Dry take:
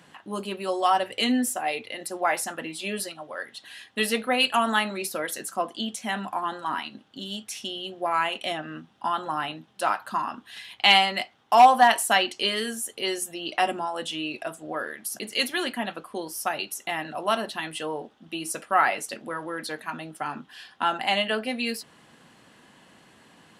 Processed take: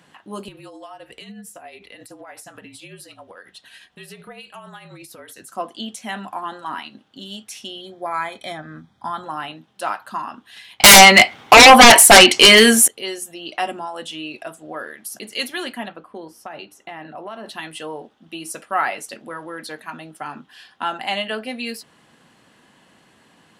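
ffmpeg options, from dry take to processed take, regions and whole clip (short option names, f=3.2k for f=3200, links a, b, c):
-filter_complex "[0:a]asettb=1/sr,asplit=3[a][b][c];[a]atrim=end=0.484[d];[b]atrim=start=0.48:end=5.52,asetpts=PTS-STARTPTS,afade=t=in:d=0.004:c=qsin,afade=t=out:st=5.036:d=0.004:c=qsin,acompressor=threshold=-36dB:ratio=5:attack=3.2:release=140:knee=1:detection=peak,tremolo=f=11:d=0.4,afreqshift=-45[e];[c]atrim=start=5.516[f];[d][e]acrossfade=d=0.004:c1=hsin:c2=qsin[g];[g][f]acrossfade=d=0.004:c1=qsin:c2=hsin,asettb=1/sr,asplit=3[h][i][j];[h]atrim=end=7.814[k];[i]atrim=start=7.81:end=9.24,asetpts=PTS-STARTPTS,afade=t=in:d=0.004:c=qsin,afade=t=out:st=1.426:d=0.004:c=qsin,asubboost=boost=8:cutoff=170,asuperstop=centerf=2800:order=8:qfactor=4.8[l];[j]atrim=start=9.236[m];[k][l]acrossfade=d=0.004:c1=hsin:c2=qsin[n];[n][m]acrossfade=d=0.004:c1=qsin:c2=hsin,asettb=1/sr,asplit=3[o][p][q];[o]atrim=end=10.804[r];[p]atrim=start=10.8:end=12.88,asetpts=PTS-STARTPTS,afade=t=in:d=0.004:c=qsin,afade=t=out:st=2.076:d=0.004:c=qsin,equalizer=f=2.2k:t=o:w=0.22:g=8.5,aeval=exprs='0.841*sin(PI/2*6.31*val(0)/0.841)':c=same[s];[q]atrim=start=12.876[t];[r][s]acrossfade=d=0.004:c1=hsin:c2=qsin[u];[u][t]acrossfade=d=0.004:c1=qsin:c2=hsin,asettb=1/sr,asplit=3[v][w][x];[v]atrim=end=15.884[y];[w]atrim=start=15.88:end=17.46,asetpts=PTS-STARTPTS,afade=t=in:d=0.004:c=qsin,afade=t=out:st=1.576:d=0.004:c=qsin,lowpass=f=1.5k:p=1,bandreject=f=60:t=h:w=6,bandreject=f=120:t=h:w=6,bandreject=f=180:t=h:w=6,bandreject=f=240:t=h:w=6,bandreject=f=300:t=h:w=6,acompressor=threshold=-29dB:ratio=6:attack=3.2:release=140:knee=1:detection=peak[z];[x]atrim=start=17.456[aa];[y][z]acrossfade=d=0.004:c1=hsin:c2=qsin[ab];[ab][aa]acrossfade=d=0.004:c1=qsin:c2=hsin"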